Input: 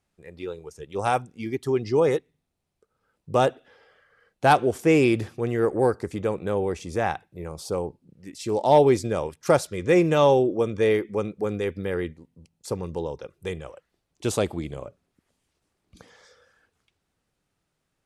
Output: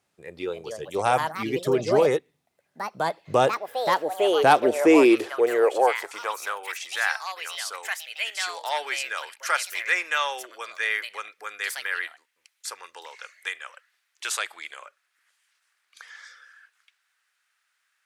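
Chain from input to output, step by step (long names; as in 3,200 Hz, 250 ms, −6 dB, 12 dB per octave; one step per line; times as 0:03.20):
parametric band 170 Hz −15 dB 1.3 octaves
in parallel at −1 dB: downward compressor, threshold −31 dBFS, peak gain reduction 17 dB
on the sum: high-pass filter sweep 150 Hz → 1,600 Hz, 0:04.32–0:06.73
delay with pitch and tempo change per echo 346 ms, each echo +4 semitones, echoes 2, each echo −6 dB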